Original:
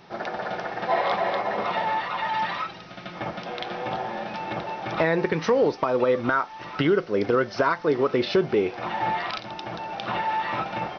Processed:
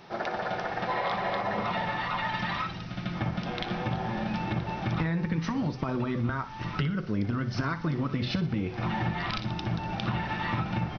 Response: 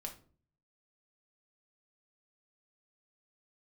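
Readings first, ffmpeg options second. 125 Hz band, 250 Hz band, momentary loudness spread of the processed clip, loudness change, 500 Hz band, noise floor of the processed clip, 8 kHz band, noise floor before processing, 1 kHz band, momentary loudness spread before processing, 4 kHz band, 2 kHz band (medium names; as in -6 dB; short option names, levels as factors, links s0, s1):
+6.5 dB, -1.0 dB, 3 LU, -5.0 dB, -12.0 dB, -38 dBFS, no reading, -42 dBFS, -6.0 dB, 11 LU, -3.0 dB, -4.5 dB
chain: -af "afftfilt=real='re*lt(hypot(re,im),0.562)':imag='im*lt(hypot(re,im),0.562)':win_size=1024:overlap=0.75,asubboost=boost=9.5:cutoff=170,bandreject=f=63.48:t=h:w=4,bandreject=f=126.96:t=h:w=4,acompressor=threshold=0.0501:ratio=6,aecho=1:1:60|120|180|240:0.2|0.0778|0.0303|0.0118"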